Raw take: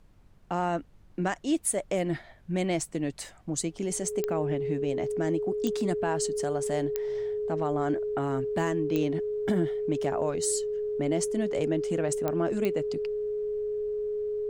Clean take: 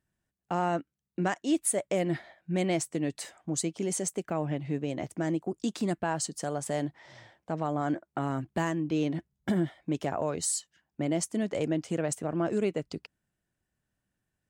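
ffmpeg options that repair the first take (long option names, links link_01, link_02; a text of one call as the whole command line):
ffmpeg -i in.wav -af "adeclick=threshold=4,bandreject=frequency=48.4:width_type=h:width=4,bandreject=frequency=96.8:width_type=h:width=4,bandreject=frequency=145.2:width_type=h:width=4,bandreject=frequency=193.6:width_type=h:width=4,bandreject=frequency=420:width=30,agate=range=-21dB:threshold=-44dB" out.wav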